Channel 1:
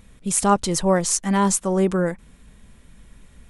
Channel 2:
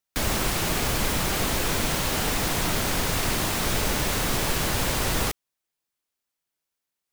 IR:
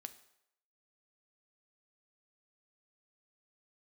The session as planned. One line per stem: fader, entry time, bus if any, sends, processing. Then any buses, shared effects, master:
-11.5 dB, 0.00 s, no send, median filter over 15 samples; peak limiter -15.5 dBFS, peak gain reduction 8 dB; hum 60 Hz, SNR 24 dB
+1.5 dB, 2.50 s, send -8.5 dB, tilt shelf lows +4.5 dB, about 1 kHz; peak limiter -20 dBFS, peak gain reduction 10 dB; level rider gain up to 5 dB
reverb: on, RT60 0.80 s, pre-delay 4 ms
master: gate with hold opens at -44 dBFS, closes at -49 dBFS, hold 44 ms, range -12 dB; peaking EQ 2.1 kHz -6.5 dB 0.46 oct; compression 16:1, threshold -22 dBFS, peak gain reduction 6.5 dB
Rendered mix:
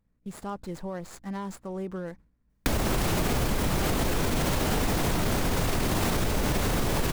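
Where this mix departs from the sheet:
stem 2 +1.5 dB -> +8.5 dB; master: missing peaking EQ 2.1 kHz -6.5 dB 0.46 oct

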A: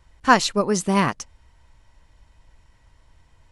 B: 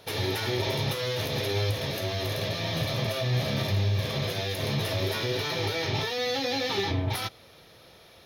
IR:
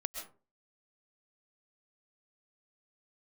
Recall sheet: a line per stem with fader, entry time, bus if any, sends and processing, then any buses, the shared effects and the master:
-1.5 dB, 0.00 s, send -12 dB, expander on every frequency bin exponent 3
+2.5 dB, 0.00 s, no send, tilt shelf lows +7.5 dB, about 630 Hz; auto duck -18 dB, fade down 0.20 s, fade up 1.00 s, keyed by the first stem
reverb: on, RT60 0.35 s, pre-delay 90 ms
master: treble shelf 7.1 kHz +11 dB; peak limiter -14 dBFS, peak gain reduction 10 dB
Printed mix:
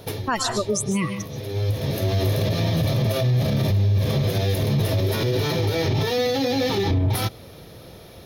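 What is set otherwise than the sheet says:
stem A: send -12 dB -> -0.5 dB; stem B +2.5 dB -> +9.0 dB

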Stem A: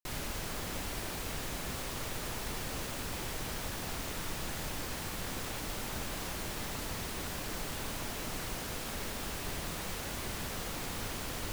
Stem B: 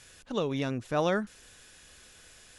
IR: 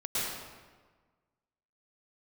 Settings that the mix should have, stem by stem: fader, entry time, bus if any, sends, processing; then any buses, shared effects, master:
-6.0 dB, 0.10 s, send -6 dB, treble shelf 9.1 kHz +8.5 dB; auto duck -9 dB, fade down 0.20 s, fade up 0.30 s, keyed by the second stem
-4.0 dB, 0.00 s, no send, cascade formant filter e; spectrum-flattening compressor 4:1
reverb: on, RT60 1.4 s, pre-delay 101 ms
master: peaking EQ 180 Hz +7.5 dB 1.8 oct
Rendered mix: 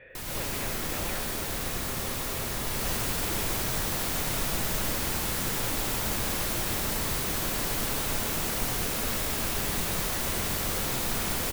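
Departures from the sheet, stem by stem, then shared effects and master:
stem A -6.0 dB -> +2.5 dB; master: missing peaking EQ 180 Hz +7.5 dB 1.8 oct

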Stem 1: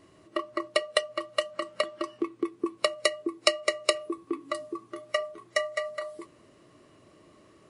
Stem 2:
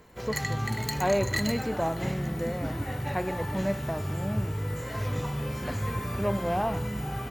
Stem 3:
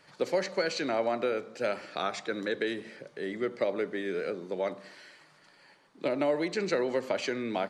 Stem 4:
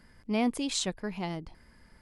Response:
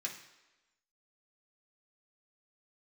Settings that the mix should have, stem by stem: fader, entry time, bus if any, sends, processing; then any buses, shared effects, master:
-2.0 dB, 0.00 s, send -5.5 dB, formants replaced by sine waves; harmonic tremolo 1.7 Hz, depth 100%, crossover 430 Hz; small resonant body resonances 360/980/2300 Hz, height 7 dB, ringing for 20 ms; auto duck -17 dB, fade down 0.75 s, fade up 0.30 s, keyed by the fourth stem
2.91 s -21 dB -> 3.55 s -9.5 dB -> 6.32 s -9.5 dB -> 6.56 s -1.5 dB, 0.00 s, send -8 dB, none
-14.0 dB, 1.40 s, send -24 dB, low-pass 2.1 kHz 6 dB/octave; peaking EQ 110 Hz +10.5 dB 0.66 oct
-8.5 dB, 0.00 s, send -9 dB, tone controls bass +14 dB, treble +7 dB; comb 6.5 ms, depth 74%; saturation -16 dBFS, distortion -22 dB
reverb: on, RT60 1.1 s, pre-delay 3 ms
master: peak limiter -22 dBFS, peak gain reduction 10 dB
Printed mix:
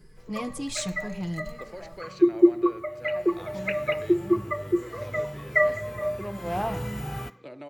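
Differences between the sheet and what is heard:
stem 1 -2.0 dB -> +5.0 dB; stem 3: missing low-pass 2.1 kHz 6 dB/octave; master: missing peak limiter -22 dBFS, peak gain reduction 10 dB

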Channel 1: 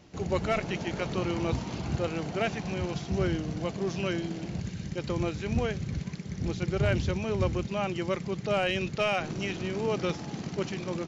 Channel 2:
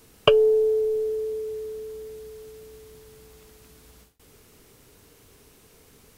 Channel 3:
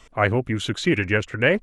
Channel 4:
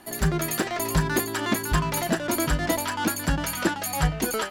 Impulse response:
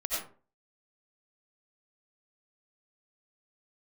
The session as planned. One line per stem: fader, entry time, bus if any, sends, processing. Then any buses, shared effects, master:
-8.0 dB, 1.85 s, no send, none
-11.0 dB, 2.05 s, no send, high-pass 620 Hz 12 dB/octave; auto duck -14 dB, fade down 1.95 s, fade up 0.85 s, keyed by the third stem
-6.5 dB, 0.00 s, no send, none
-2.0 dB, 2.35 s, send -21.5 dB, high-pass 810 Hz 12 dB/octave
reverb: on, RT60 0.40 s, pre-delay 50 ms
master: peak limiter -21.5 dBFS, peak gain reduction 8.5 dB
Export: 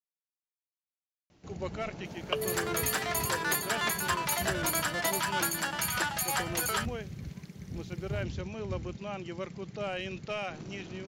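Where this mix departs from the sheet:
stem 1: entry 1.85 s -> 1.30 s; stem 3: muted; master: missing peak limiter -21.5 dBFS, peak gain reduction 8.5 dB

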